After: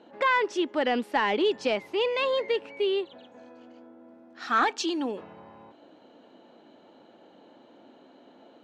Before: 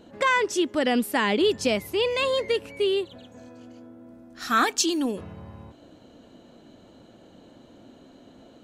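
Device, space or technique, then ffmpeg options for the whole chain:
intercom: -af "highpass=300,lowpass=3500,equalizer=frequency=860:width_type=o:width=0.2:gain=7,asoftclip=type=tanh:threshold=-11.5dB,volume=-1dB"

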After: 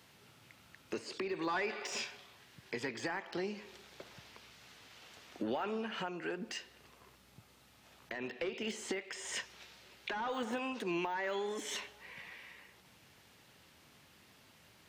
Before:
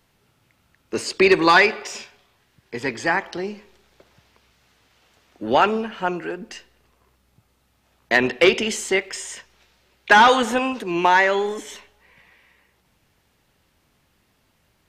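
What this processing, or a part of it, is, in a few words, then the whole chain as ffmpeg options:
broadcast voice chain: -af "highpass=95,deesser=0.9,acompressor=threshold=-38dB:ratio=4,equalizer=frequency=3700:width_type=o:width=2.5:gain=4,alimiter=level_in=3.5dB:limit=-24dB:level=0:latency=1:release=343,volume=-3.5dB,volume=1dB"

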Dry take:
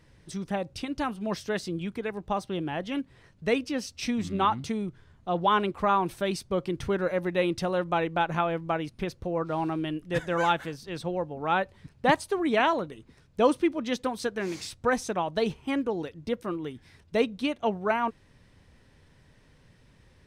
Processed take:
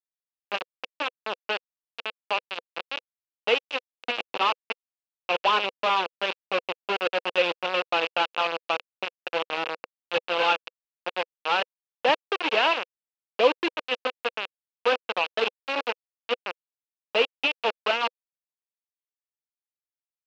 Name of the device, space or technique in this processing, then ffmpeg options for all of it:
hand-held game console: -af "acrusher=bits=3:mix=0:aa=0.000001,highpass=460,equalizer=frequency=500:width_type=q:width=4:gain=6,equalizer=frequency=1900:width_type=q:width=4:gain=-5,equalizer=frequency=2700:width_type=q:width=4:gain=10,lowpass=frequency=4000:width=0.5412,lowpass=frequency=4000:width=1.3066"

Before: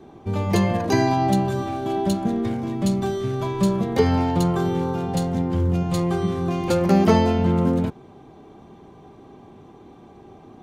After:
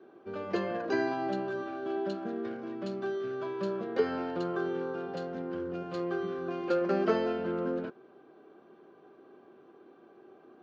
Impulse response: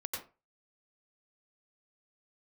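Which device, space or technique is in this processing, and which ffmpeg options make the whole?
phone earpiece: -af "highpass=350,equalizer=frequency=360:width_type=q:width=4:gain=5,equalizer=frequency=530:width_type=q:width=4:gain=3,equalizer=frequency=870:width_type=q:width=4:gain=-9,equalizer=frequency=1500:width_type=q:width=4:gain=9,equalizer=frequency=2100:width_type=q:width=4:gain=-6,equalizer=frequency=3600:width_type=q:width=4:gain=-7,lowpass=frequency=4300:width=0.5412,lowpass=frequency=4300:width=1.3066,volume=-8.5dB"

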